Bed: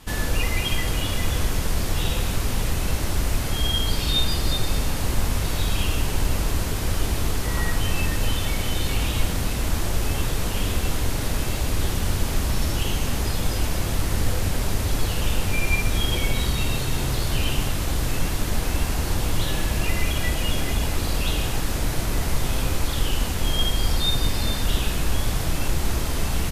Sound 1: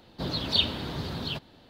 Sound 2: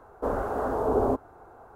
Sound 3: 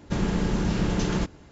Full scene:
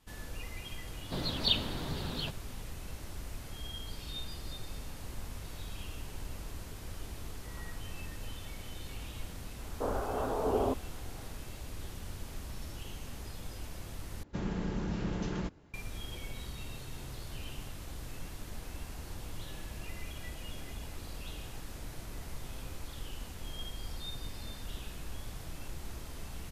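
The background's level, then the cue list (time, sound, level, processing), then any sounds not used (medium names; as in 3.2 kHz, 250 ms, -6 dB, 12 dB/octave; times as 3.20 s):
bed -19.5 dB
0.92 s: add 1 -4.5 dB
9.58 s: add 2 -6 dB
14.23 s: replace with 3 -10 dB + treble shelf 4.7 kHz -7 dB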